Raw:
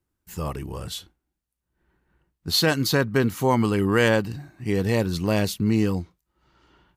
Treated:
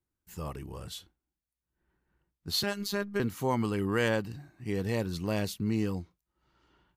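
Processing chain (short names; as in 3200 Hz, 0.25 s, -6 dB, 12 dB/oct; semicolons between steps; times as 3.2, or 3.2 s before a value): 2.63–3.2 robotiser 202 Hz; gain -8.5 dB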